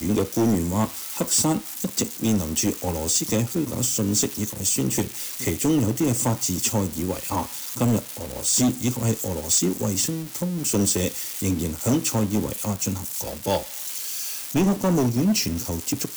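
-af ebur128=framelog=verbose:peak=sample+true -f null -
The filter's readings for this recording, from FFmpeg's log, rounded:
Integrated loudness:
  I:         -23.4 LUFS
  Threshold: -33.4 LUFS
Loudness range:
  LRA:         1.9 LU
  Threshold: -43.5 LUFS
  LRA low:   -24.6 LUFS
  LRA high:  -22.6 LUFS
Sample peak:
  Peak:      -15.8 dBFS
True peak:
  Peak:      -12.4 dBFS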